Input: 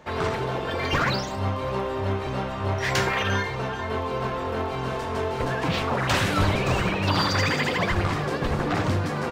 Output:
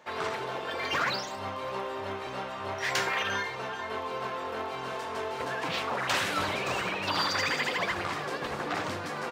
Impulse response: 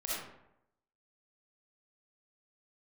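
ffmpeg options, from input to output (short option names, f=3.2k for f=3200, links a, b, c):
-af "highpass=f=630:p=1,volume=-3dB"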